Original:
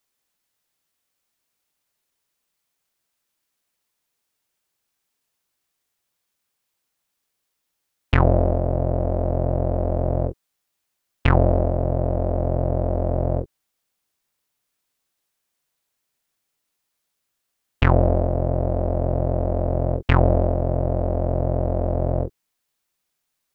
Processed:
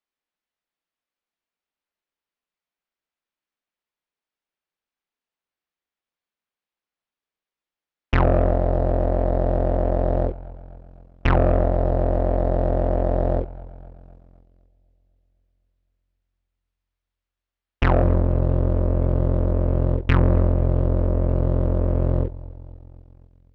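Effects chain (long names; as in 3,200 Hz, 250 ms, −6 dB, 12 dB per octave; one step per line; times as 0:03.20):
parametric band 110 Hz −15 dB 0.41 octaves, from 0:18.03 730 Hz
feedback echo with a low-pass in the loop 253 ms, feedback 72%, low-pass 1,100 Hz, level −19 dB
leveller curve on the samples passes 2
low-pass filter 3,300 Hz 12 dB per octave
level −4.5 dB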